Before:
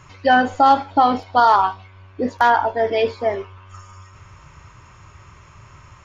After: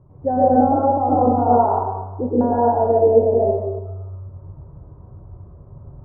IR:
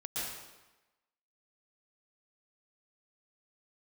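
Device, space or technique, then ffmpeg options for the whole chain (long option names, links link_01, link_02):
next room: -filter_complex "[0:a]lowpass=frequency=640:width=0.5412,lowpass=frequency=640:width=1.3066[link_01];[1:a]atrim=start_sample=2205[link_02];[link_01][link_02]afir=irnorm=-1:irlink=0,asettb=1/sr,asplit=3[link_03][link_04][link_05];[link_03]atrim=end=1.084[link_06];[link_04]atrim=start=1.08:end=1.57,asetpts=PTS-STARTPTS,afade=type=in:duration=0.004:curve=qsin,afade=type=out:start_time=0.486:duration=0.004:curve=qsin,asplit=2[link_07][link_08];[link_08]adelay=42,volume=-4.5dB[link_09];[link_07][link_09]amix=inputs=2:normalize=0,atrim=end_sample=21609[link_10];[link_05]atrim=start=1.566[link_11];[link_06][link_10]acrossfade=duration=0.004:curve1=hsin:curve2=qsin[link_12];[link_12][link_11]acrossfade=duration=0.004:curve1=qsin:curve2=hsin,volume=3.5dB"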